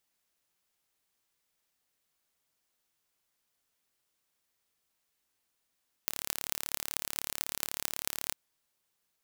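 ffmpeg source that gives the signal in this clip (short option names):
-f lavfi -i "aevalsrc='0.794*eq(mod(n,1222),0)*(0.5+0.5*eq(mod(n,9776),0))':d=2.26:s=44100"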